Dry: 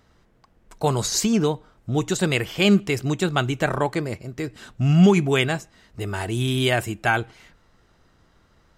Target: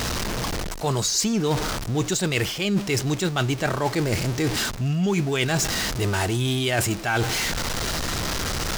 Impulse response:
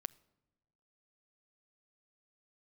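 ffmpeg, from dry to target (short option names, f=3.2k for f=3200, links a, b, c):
-af "aeval=exprs='val(0)+0.5*0.0422*sgn(val(0))':c=same,equalizer=f=5.4k:w=1.1:g=6,areverse,acompressor=threshold=-26dB:ratio=10,areverse,volume=6dB"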